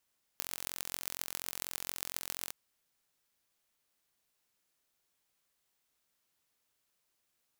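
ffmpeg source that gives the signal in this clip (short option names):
-f lavfi -i "aevalsrc='0.447*eq(mod(n,998),0)*(0.5+0.5*eq(mod(n,5988),0))':d=2.12:s=44100"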